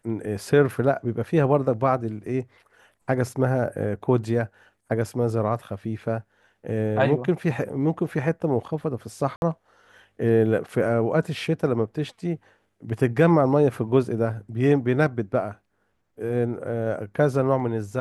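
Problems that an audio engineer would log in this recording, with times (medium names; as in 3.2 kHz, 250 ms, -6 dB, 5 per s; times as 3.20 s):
9.36–9.42 s: dropout 61 ms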